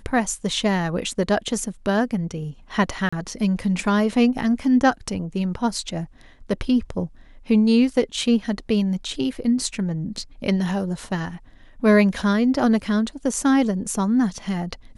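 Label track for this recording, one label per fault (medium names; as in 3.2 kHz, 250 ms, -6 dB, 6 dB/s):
3.090000	3.120000	dropout 35 ms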